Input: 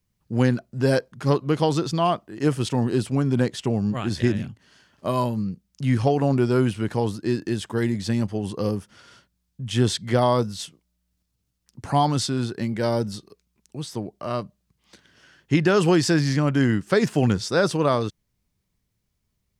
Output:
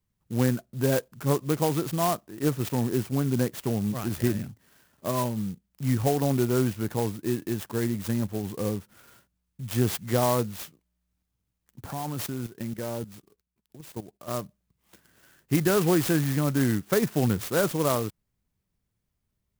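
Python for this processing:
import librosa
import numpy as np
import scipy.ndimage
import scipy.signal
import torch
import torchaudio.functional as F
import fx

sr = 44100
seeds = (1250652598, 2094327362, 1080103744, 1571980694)

y = fx.level_steps(x, sr, step_db=14, at=(11.9, 14.29), fade=0.02)
y = fx.clock_jitter(y, sr, seeds[0], jitter_ms=0.073)
y = F.gain(torch.from_numpy(y), -4.0).numpy()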